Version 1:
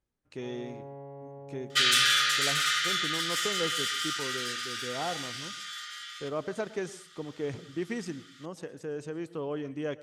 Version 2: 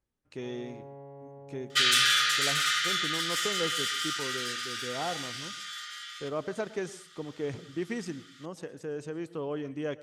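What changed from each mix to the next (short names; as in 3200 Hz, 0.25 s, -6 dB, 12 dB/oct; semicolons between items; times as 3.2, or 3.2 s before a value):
first sound: send -8.0 dB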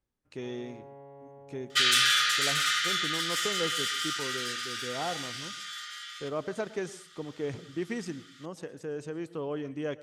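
first sound: add tilt +2 dB/oct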